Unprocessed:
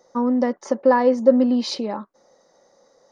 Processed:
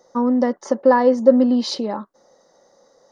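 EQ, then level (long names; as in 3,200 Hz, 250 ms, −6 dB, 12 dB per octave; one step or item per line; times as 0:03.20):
parametric band 2,400 Hz −9.5 dB 0.23 octaves
+2.0 dB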